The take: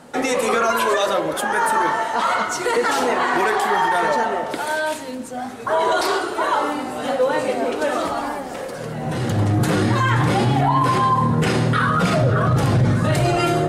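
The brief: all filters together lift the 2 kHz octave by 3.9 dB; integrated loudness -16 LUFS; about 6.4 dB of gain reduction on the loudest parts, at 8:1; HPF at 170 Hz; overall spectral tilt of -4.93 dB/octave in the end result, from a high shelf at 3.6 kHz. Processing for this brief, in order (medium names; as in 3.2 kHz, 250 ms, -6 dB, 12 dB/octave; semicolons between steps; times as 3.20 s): high-pass 170 Hz; peaking EQ 2 kHz +6 dB; treble shelf 3.6 kHz -3.5 dB; compression 8:1, threshold -20 dBFS; trim +8 dB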